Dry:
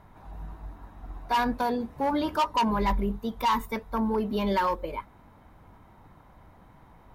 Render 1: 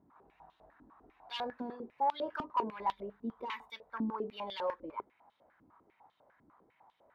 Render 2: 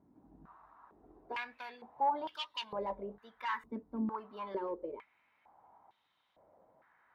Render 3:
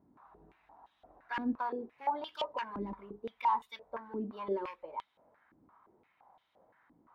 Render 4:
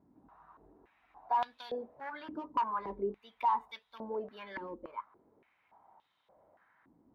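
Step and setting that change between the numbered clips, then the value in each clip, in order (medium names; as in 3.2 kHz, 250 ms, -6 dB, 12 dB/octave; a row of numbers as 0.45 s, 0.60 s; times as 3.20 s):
step-sequenced band-pass, rate: 10 Hz, 2.2 Hz, 5.8 Hz, 3.5 Hz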